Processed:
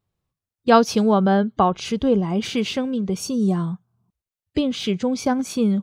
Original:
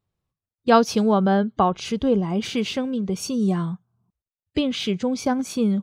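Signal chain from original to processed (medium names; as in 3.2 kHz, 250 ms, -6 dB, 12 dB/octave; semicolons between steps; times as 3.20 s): 3.14–4.84 s: dynamic bell 2.2 kHz, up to -6 dB, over -44 dBFS, Q 0.99; trim +1.5 dB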